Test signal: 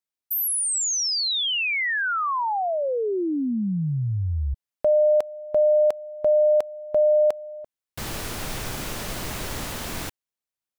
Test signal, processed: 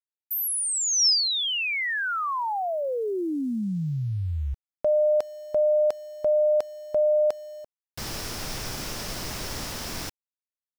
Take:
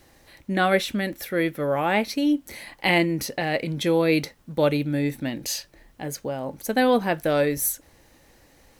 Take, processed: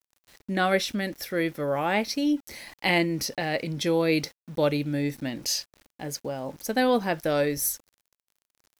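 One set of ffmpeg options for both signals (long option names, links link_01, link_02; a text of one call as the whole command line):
ffmpeg -i in.wav -af "aeval=exprs='0.501*(cos(1*acos(clip(val(0)/0.501,-1,1)))-cos(1*PI/2))+0.00316*(cos(2*acos(clip(val(0)/0.501,-1,1)))-cos(2*PI/2))':channel_layout=same,equalizer=frequency=5300:width_type=o:width=0.4:gain=9,aeval=exprs='val(0)*gte(abs(val(0)),0.00562)':channel_layout=same,volume=-3dB" out.wav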